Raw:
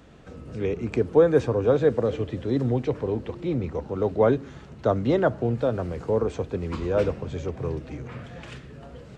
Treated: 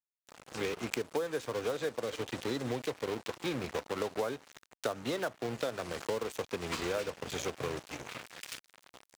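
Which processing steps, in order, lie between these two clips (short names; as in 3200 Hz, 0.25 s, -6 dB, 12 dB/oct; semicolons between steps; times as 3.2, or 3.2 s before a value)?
crossover distortion -36.5 dBFS; tilt +4 dB/oct; compressor 12:1, threshold -35 dBFS, peak gain reduction 18.5 dB; gain +4.5 dB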